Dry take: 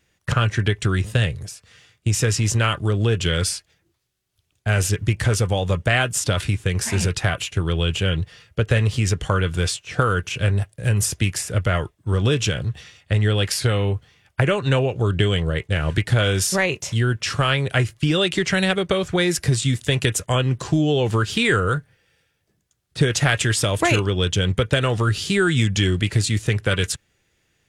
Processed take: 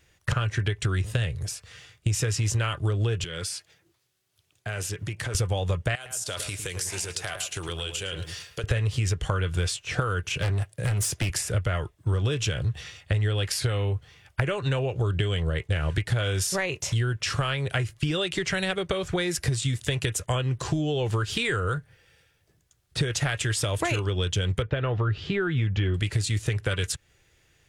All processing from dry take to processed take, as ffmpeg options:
ffmpeg -i in.wav -filter_complex "[0:a]asettb=1/sr,asplit=3[link_01][link_02][link_03];[link_01]atrim=end=3.244[link_04];[link_02]atrim=start=3.24:end=5.35,asetpts=PTS-STARTPTS,afade=type=in:duration=0.004:curve=qsin,afade=type=out:start_time=2.106:duration=0.004:curve=qsin,highpass=140,acompressor=threshold=-35dB:ratio=3:attack=3.2:release=140:knee=1:detection=peak[link_05];[link_03]atrim=start=5.346[link_06];[link_04][link_05]acrossfade=duration=0.004:curve1=hsin:curve2=qsin[link_07];[link_07][link_06]acrossfade=duration=0.004:curve1=qsin:curve2=hsin,asettb=1/sr,asplit=3[link_08][link_09][link_10];[link_08]atrim=end=5.954[link_11];[link_09]atrim=start=5.95:end=8.64,asetpts=PTS-STARTPTS,afade=type=in:duration=0.004:curve=qsin,afade=type=out:start_time=2.686:duration=0.004:curve=qsin,bass=frequency=250:gain=-12,treble=frequency=4000:gain=13,acompressor=threshold=-33dB:ratio=4:attack=3.2:release=140:knee=1:detection=peak,asplit=2[link_12][link_13];[link_13]adelay=109,lowpass=frequency=1800:poles=1,volume=-7dB,asplit=2[link_14][link_15];[link_15]adelay=109,lowpass=frequency=1800:poles=1,volume=0.16,asplit=2[link_16][link_17];[link_17]adelay=109,lowpass=frequency=1800:poles=1,volume=0.16[link_18];[link_12][link_14][link_16][link_18]amix=inputs=4:normalize=0,atrim=end_sample=118629[link_19];[link_10]atrim=start=8.636[link_20];[link_11][link_19]acrossfade=duration=0.004:curve1=hsin:curve2=qsin[link_21];[link_21][link_20]acrossfade=duration=0.004:curve1=qsin:curve2=hsin,asettb=1/sr,asplit=3[link_22][link_23][link_24];[link_22]atrim=end=10.374[link_25];[link_23]atrim=start=10.37:end=11.3,asetpts=PTS-STARTPTS,afade=type=in:duration=0.004:curve=qsin,afade=type=out:start_time=0.926:duration=0.004:curve=qsin,highpass=110,volume=20.5dB,asoftclip=hard,volume=-20.5dB[link_26];[link_24]atrim=start=11.296[link_27];[link_25][link_26]acrossfade=duration=0.004:curve1=hsin:curve2=qsin[link_28];[link_28][link_27]acrossfade=duration=0.004:curve1=qsin:curve2=hsin,asettb=1/sr,asplit=3[link_29][link_30][link_31];[link_29]atrim=end=24.624[link_32];[link_30]atrim=start=24.62:end=25.94,asetpts=PTS-STARTPTS,afade=type=in:duration=0.004:curve=qsin,afade=type=out:start_time=1.316:duration=0.004:curve=qsin,lowpass=3300,aemphasis=mode=reproduction:type=75fm[link_33];[link_31]atrim=start=25.936[link_34];[link_32][link_33]acrossfade=duration=0.004:curve1=hsin:curve2=qsin[link_35];[link_35][link_34]acrossfade=duration=0.004:curve1=qsin:curve2=hsin,equalizer=frequency=220:width_type=o:width=0.64:gain=-8,acompressor=threshold=-29dB:ratio=4,lowshelf=frequency=120:gain=4.5,volume=3dB" out.wav

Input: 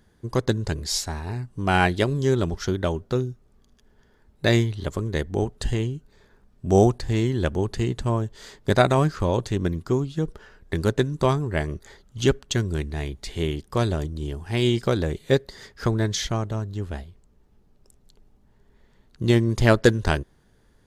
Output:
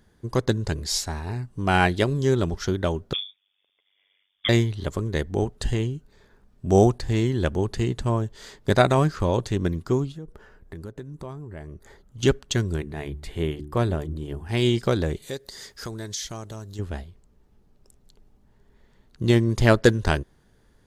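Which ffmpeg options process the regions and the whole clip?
ffmpeg -i in.wav -filter_complex "[0:a]asettb=1/sr,asplit=3[link_01][link_02][link_03];[link_01]atrim=end=3.134[link_04];[link_02]atrim=start=3.13:end=4.49,asetpts=PTS-STARTPTS,afade=type=in:duration=0.004:curve=qsin,afade=type=out:start_time=1.356:duration=0.004:curve=qsin,highpass=frequency=300:width=0.5412,highpass=frequency=300:width=1.3066,tremolo=f=97:d=0.824,lowpass=frequency=3200:width_type=q:width=0.5098,lowpass=frequency=3200:width_type=q:width=0.6013,lowpass=frequency=3200:width_type=q:width=0.9,lowpass=frequency=3200:width_type=q:width=2.563,afreqshift=-3800[link_05];[link_03]atrim=start=4.486[link_06];[link_04][link_05]acrossfade=duration=0.004:curve1=hsin:curve2=qsin[link_07];[link_07][link_06]acrossfade=duration=0.004:curve1=qsin:curve2=hsin,asettb=1/sr,asplit=3[link_08][link_09][link_10];[link_08]atrim=end=10.124[link_11];[link_09]atrim=start=10.12:end=12.23,asetpts=PTS-STARTPTS,afade=type=in:duration=0.004:curve=qsin,afade=type=out:start_time=2.106:duration=0.004:curve=qsin,equalizer=frequency=4300:width=0.52:gain=-8.5,acompressor=threshold=-38dB:ratio=3:attack=3.2:release=140:knee=1:detection=peak[link_12];[link_10]atrim=start=12.226[link_13];[link_11][link_12]acrossfade=duration=0.004:curve1=hsin:curve2=qsin[link_14];[link_14][link_13]acrossfade=duration=0.004:curve1=qsin:curve2=hsin,asettb=1/sr,asplit=3[link_15][link_16][link_17];[link_15]atrim=end=12.764[link_18];[link_16]atrim=start=12.76:end=14.49,asetpts=PTS-STARTPTS,afade=type=in:duration=0.004:curve=qsin,afade=type=out:start_time=1.726:duration=0.004:curve=qsin,equalizer=frequency=5500:width_type=o:width=1.4:gain=-10.5,bandreject=frequency=73.72:width_type=h:width=4,bandreject=frequency=147.44:width_type=h:width=4,bandreject=frequency=221.16:width_type=h:width=4,bandreject=frequency=294.88:width_type=h:width=4,bandreject=frequency=368.6:width_type=h:width=4[link_19];[link_17]atrim=start=14.486[link_20];[link_18][link_19]acrossfade=duration=0.004:curve1=hsin:curve2=qsin[link_21];[link_21][link_20]acrossfade=duration=0.004:curve1=qsin:curve2=hsin,asettb=1/sr,asplit=3[link_22][link_23][link_24];[link_22]atrim=end=15.224[link_25];[link_23]atrim=start=15.22:end=16.79,asetpts=PTS-STARTPTS,afade=type=in:duration=0.004:curve=qsin,afade=type=out:start_time=1.566:duration=0.004:curve=qsin,bass=frequency=250:gain=-4,treble=frequency=4000:gain=12,acompressor=threshold=-38dB:ratio=2:attack=3.2:release=140:knee=1:detection=peak[link_26];[link_24]atrim=start=16.786[link_27];[link_25][link_26]acrossfade=duration=0.004:curve1=hsin:curve2=qsin[link_28];[link_28][link_27]acrossfade=duration=0.004:curve1=qsin:curve2=hsin" out.wav

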